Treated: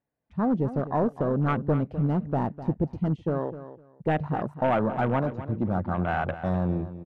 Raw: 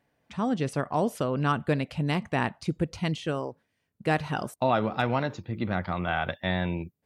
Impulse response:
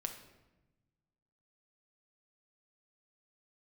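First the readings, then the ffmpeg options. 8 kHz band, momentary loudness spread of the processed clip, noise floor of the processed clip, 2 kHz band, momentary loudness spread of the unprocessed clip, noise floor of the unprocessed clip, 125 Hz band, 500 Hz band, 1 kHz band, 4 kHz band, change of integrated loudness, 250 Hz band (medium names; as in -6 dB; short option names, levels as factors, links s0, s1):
under -20 dB, 6 LU, -60 dBFS, -4.5 dB, 7 LU, -78 dBFS, +3.0 dB, +1.5 dB, 0.0 dB, under -10 dB, +1.5 dB, +3.0 dB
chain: -filter_complex "[0:a]lowpass=f=1200:p=1,asoftclip=type=hard:threshold=0.075,afwtdn=0.0141,asplit=2[s0][s1];[s1]aecho=0:1:253|506:0.224|0.0425[s2];[s0][s2]amix=inputs=2:normalize=0,volume=1.58"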